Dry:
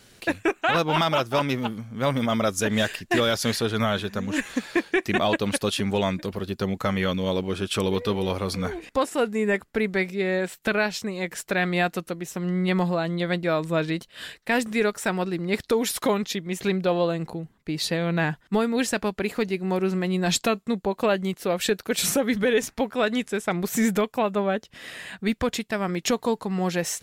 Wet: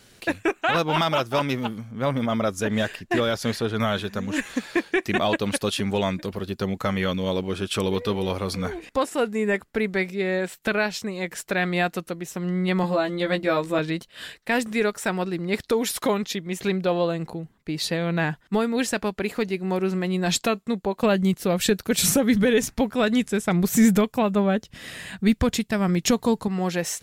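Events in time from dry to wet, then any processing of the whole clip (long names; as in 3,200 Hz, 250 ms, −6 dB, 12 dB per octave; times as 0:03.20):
0:01.91–0:03.80: high-shelf EQ 2,600 Hz −7 dB
0:12.82–0:13.79: double-tracking delay 15 ms −2 dB
0:21.03–0:26.48: bass and treble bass +10 dB, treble +4 dB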